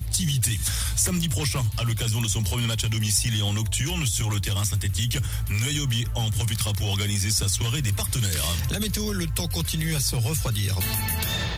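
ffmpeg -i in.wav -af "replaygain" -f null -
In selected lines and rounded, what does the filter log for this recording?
track_gain = +8.4 dB
track_peak = 0.205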